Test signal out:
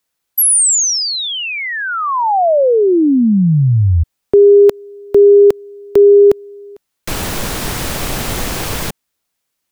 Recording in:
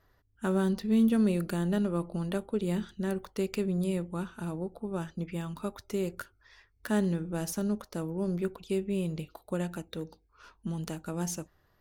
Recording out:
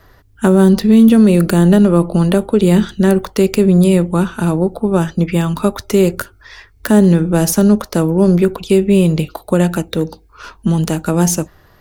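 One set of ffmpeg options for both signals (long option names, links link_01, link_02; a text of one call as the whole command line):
ffmpeg -i in.wav -filter_complex "[0:a]acrossover=split=270|850|6700[link_01][link_02][link_03][link_04];[link_03]acompressor=threshold=-43dB:ratio=6[link_05];[link_01][link_02][link_05][link_04]amix=inputs=4:normalize=0,alimiter=level_in=21.5dB:limit=-1dB:release=50:level=0:latency=1,volume=-1dB" out.wav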